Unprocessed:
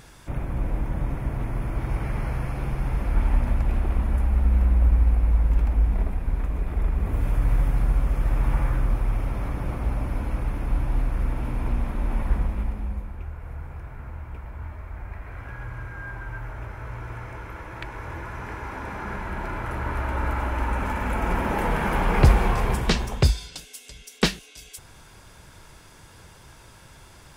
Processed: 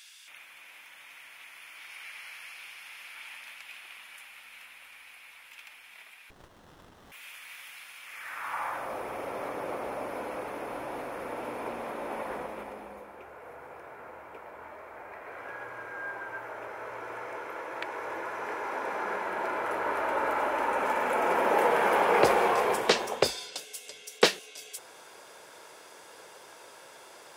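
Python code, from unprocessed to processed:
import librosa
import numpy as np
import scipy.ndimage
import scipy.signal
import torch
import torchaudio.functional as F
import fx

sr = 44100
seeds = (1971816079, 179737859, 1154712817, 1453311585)

y = fx.filter_sweep_highpass(x, sr, from_hz=2800.0, to_hz=480.0, start_s=8.0, end_s=9.02, q=1.9)
y = fx.running_max(y, sr, window=17, at=(6.3, 7.12))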